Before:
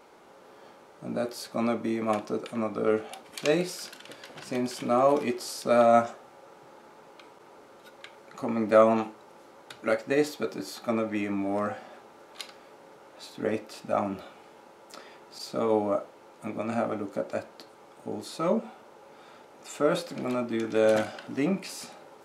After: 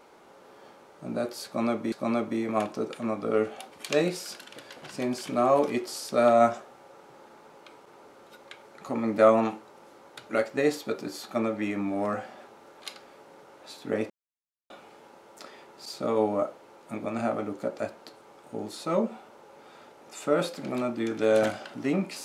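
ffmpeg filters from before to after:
ffmpeg -i in.wav -filter_complex "[0:a]asplit=4[link_01][link_02][link_03][link_04];[link_01]atrim=end=1.922[link_05];[link_02]atrim=start=1.448:end=13.63,asetpts=PTS-STARTPTS,afade=type=out:start_time=12.178:duration=0.004:curve=hsin[link_06];[link_03]atrim=start=13.63:end=14.23,asetpts=PTS-STARTPTS,volume=0[link_07];[link_04]atrim=start=14.23,asetpts=PTS-STARTPTS,afade=type=in:duration=0.004:curve=hsin[link_08];[link_06][link_07][link_08]concat=n=3:v=0:a=1[link_09];[link_05][link_09]acrossfade=duration=0.004:curve1=hsin:curve2=hsin" out.wav

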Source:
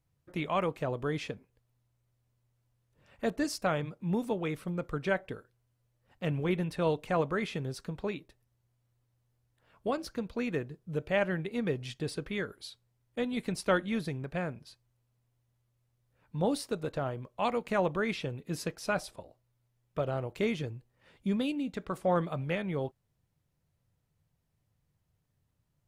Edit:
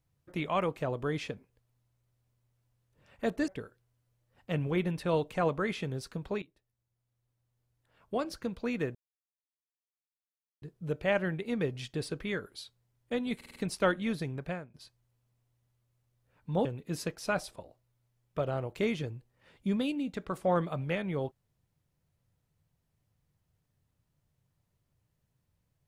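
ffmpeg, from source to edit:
ffmpeg -i in.wav -filter_complex "[0:a]asplit=10[link_01][link_02][link_03][link_04][link_05][link_06][link_07][link_08][link_09][link_10];[link_01]atrim=end=3.482[link_11];[link_02]atrim=start=5.208:end=8.15,asetpts=PTS-STARTPTS,afade=type=out:start_time=2.938:duration=0.004:curve=hsin:silence=0.177828[link_12];[link_03]atrim=start=8.15:end=10.68,asetpts=PTS-STARTPTS,afade=type=in:duration=1.94:silence=0.177828,afade=type=out:start_time=2.526:duration=0.004:curve=hsin,apad=pad_dur=1.67[link_13];[link_04]atrim=start=10.68:end=13.472,asetpts=PTS-STARTPTS,afade=type=in:duration=0.004:curve=hsin[link_14];[link_05]atrim=start=13.418:end=13.472[link_15];[link_06]atrim=start=13.418:end=13.472[link_16];[link_07]atrim=start=13.418:end=13.472[link_17];[link_08]atrim=start=13.418:end=14.6,asetpts=PTS-STARTPTS,afade=type=out:start_time=0.922:duration=0.26:curve=qua:silence=0.177828[link_18];[link_09]atrim=start=14.6:end=16.512,asetpts=PTS-STARTPTS,afade=type=in:duration=0.004:curve=hsin:silence=0.177828[link_19];[link_10]atrim=start=18.248[link_20];[link_12][link_13][link_14]concat=n=3:v=0:a=1[link_21];[link_11][link_21]acrossfade=duration=0.004:curve1=hsin:curve2=hsin[link_22];[link_22][link_15]acrossfade=duration=0.004:curve1=hsin:curve2=hsin[link_23];[link_23][link_16]acrossfade=duration=0.004:curve1=hsin:curve2=hsin[link_24];[link_24][link_17]acrossfade=duration=0.004:curve1=hsin:curve2=hsin[link_25];[link_18][link_19]concat=n=2:v=0:a=1[link_26];[link_25][link_26]acrossfade=duration=0.004:curve1=hsin:curve2=hsin[link_27];[link_27][link_20]acrossfade=duration=0.004:curve1=hsin:curve2=hsin" out.wav

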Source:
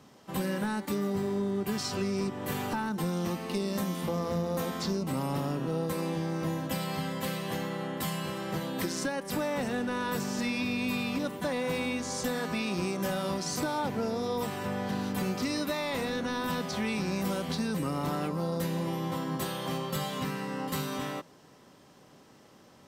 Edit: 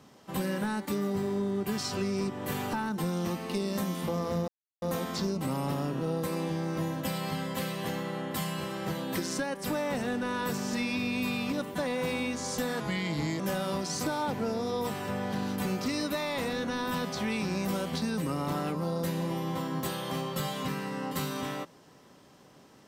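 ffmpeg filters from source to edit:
ffmpeg -i in.wav -filter_complex "[0:a]asplit=4[link_01][link_02][link_03][link_04];[link_01]atrim=end=4.48,asetpts=PTS-STARTPTS,afade=type=out:start_time=4.476:duration=0.004:curve=hsin,apad=pad_dur=0.34[link_05];[link_02]atrim=start=4.48:end=12.464,asetpts=PTS-STARTPTS,afade=type=in:duration=0.004:curve=hsin[link_06];[link_03]atrim=start=12.46:end=12.96,asetpts=PTS-STARTPTS,asetrate=37044,aresample=44100[link_07];[link_04]atrim=start=12.956[link_08];[link_05][link_06]concat=n=2:v=0:a=1[link_09];[link_09][link_07]acrossfade=duration=0.004:curve1=hsin:curve2=hsin[link_10];[link_10][link_08]acrossfade=duration=0.004:curve1=hsin:curve2=hsin" out.wav

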